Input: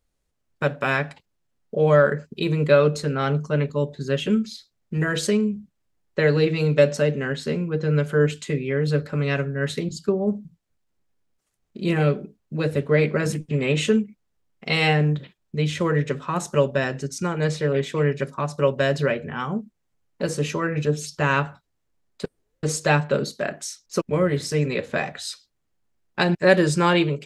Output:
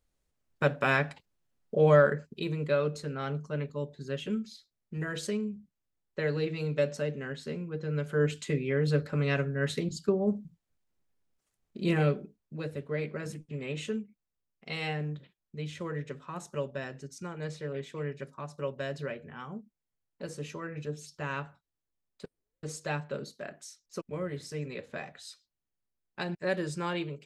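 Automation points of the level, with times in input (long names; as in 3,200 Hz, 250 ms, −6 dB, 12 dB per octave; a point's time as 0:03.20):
0:01.87 −3.5 dB
0:02.63 −11.5 dB
0:07.94 −11.5 dB
0:08.41 −5 dB
0:11.95 −5 dB
0:12.78 −14.5 dB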